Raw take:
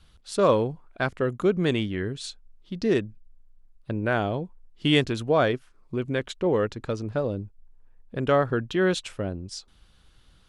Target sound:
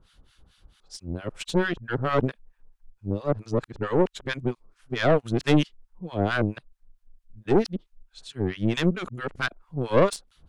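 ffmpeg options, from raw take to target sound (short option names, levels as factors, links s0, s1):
-filter_complex "[0:a]areverse,acrossover=split=1000[s0][s1];[s0]aeval=exprs='val(0)*(1-1/2+1/2*cos(2*PI*4.5*n/s))':c=same[s2];[s1]aeval=exprs='val(0)*(1-1/2-1/2*cos(2*PI*4.5*n/s))':c=same[s3];[s2][s3]amix=inputs=2:normalize=0,aeval=exprs='(tanh(11.2*val(0)+0.75)-tanh(0.75))/11.2':c=same,volume=2.66"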